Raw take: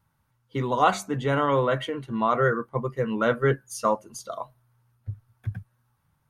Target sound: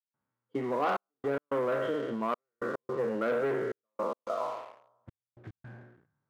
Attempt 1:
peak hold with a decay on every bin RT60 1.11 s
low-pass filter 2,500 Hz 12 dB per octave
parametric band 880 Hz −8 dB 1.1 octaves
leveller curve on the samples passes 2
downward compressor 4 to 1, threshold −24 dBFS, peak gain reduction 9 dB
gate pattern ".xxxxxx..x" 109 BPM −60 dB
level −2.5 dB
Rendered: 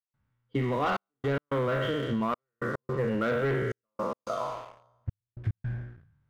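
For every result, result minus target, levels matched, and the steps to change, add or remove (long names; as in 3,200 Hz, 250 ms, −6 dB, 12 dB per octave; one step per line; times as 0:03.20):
2,000 Hz band +2.5 dB; 250 Hz band +2.5 dB
change: low-pass filter 1,200 Hz 12 dB per octave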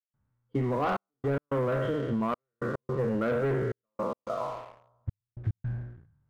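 250 Hz band +3.0 dB
add after downward compressor: high-pass filter 300 Hz 12 dB per octave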